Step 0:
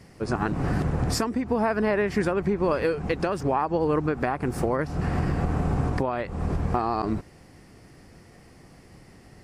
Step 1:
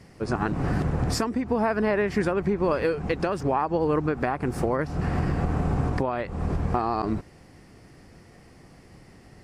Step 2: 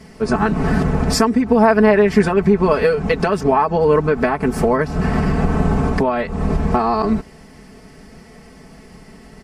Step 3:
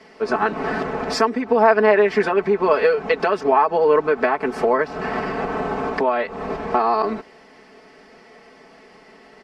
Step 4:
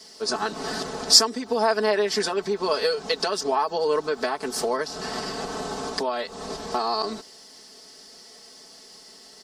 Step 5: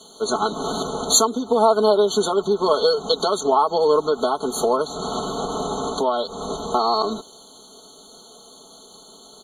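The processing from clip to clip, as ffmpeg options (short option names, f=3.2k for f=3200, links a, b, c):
-af "highshelf=f=9.3k:g=-4.5"
-af "aecho=1:1:4.6:0.86,volume=7dB"
-filter_complex "[0:a]acrossover=split=300 5100:gain=0.0708 1 0.126[a][b][c];[a][b][c]amix=inputs=3:normalize=0"
-af "aexciter=amount=15.8:drive=2.8:freq=3.6k,volume=-7.5dB"
-af "afftfilt=real='re*eq(mod(floor(b*sr/1024/1500),2),0)':imag='im*eq(mod(floor(b*sr/1024/1500),2),0)':win_size=1024:overlap=0.75,volume=6dB"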